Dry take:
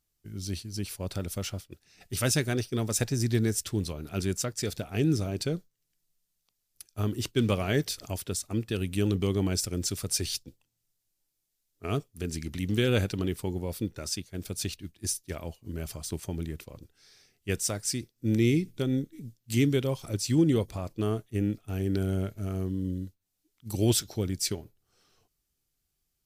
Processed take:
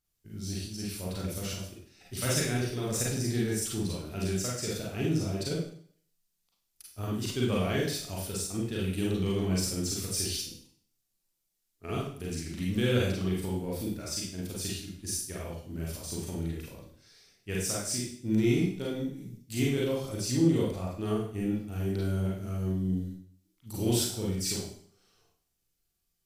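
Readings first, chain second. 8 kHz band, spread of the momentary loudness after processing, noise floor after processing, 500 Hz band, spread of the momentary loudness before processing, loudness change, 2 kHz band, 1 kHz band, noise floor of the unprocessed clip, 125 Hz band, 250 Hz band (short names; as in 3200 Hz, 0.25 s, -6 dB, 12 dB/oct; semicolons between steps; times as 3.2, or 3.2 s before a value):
-1.0 dB, 12 LU, -79 dBFS, -1.0 dB, 12 LU, -1.5 dB, -1.0 dB, -0.5 dB, -80 dBFS, -2.0 dB, -1.0 dB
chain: in parallel at -10 dB: soft clip -29 dBFS, distortion -8 dB; on the sum: Schroeder reverb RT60 0.55 s, combs from 33 ms, DRR -5 dB; gain -8.5 dB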